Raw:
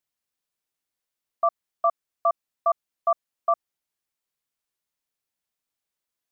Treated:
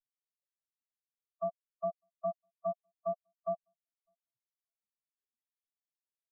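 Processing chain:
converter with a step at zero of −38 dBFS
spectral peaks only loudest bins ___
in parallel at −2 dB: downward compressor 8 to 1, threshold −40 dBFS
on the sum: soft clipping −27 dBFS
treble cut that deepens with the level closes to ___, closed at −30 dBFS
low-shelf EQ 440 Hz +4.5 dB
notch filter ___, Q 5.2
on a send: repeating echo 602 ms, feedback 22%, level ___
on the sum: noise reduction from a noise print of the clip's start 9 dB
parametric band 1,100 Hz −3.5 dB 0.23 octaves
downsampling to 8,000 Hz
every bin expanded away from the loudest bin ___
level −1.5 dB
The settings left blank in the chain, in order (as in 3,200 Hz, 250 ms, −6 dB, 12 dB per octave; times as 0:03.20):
4, 690 Hz, 790 Hz, −18 dB, 2.5 to 1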